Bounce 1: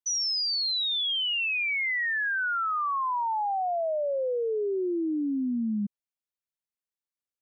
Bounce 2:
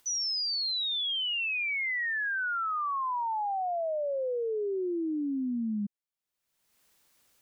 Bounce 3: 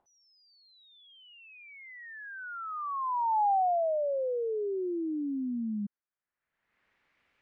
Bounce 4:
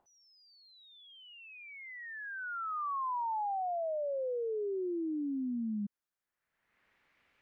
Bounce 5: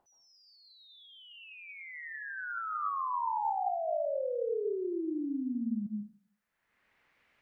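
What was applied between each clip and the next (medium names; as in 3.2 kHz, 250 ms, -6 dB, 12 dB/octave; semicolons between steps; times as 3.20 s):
upward compressor, threshold -41 dBFS; trim -3 dB
low-pass sweep 800 Hz -> 2.2 kHz, 3.30–7.25 s; trim -2 dB
compression 12:1, threshold -34 dBFS, peak gain reduction 10 dB; trim +1 dB
plate-style reverb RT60 0.51 s, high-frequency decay 0.75×, pre-delay 115 ms, DRR 2.5 dB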